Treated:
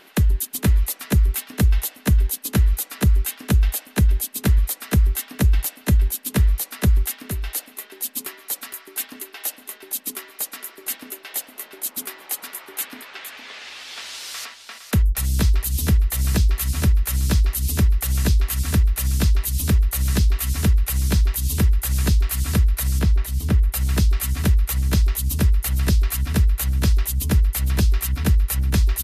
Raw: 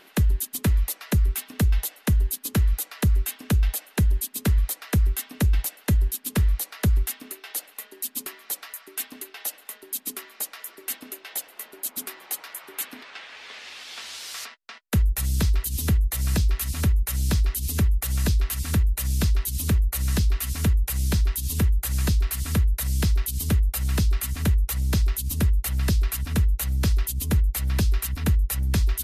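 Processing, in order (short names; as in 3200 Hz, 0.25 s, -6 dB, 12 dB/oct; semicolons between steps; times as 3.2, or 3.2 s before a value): 22.99–23.59 high shelf 3200 Hz -11 dB; echo 0.461 s -10 dB; gain +3 dB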